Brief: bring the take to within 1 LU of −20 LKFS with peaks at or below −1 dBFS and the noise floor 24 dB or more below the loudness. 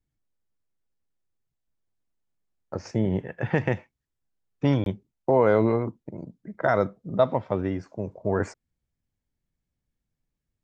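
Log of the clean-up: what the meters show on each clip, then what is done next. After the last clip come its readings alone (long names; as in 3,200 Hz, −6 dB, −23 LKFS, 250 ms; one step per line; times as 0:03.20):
number of dropouts 1; longest dropout 22 ms; integrated loudness −26.0 LKFS; sample peak −7.5 dBFS; target loudness −20.0 LKFS
→ repair the gap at 0:04.84, 22 ms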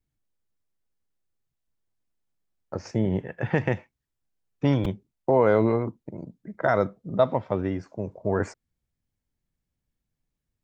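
number of dropouts 0; integrated loudness −26.0 LKFS; sample peak −7.5 dBFS; target loudness −20.0 LKFS
→ level +6 dB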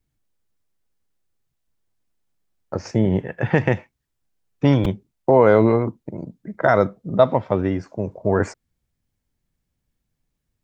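integrated loudness −20.0 LKFS; sample peak −1.5 dBFS; background noise floor −78 dBFS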